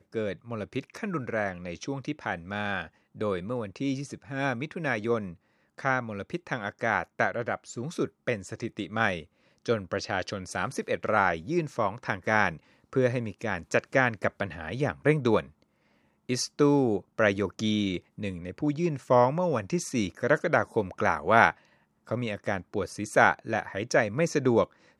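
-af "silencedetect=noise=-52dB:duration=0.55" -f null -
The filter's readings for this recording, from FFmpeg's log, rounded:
silence_start: 15.63
silence_end: 16.29 | silence_duration: 0.67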